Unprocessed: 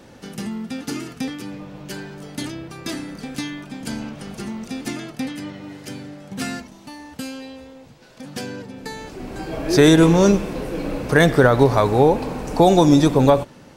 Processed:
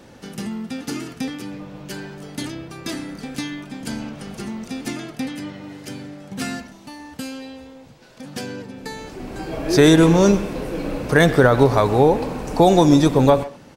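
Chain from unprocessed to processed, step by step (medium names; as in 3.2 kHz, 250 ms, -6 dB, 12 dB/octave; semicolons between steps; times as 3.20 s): speakerphone echo 130 ms, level -15 dB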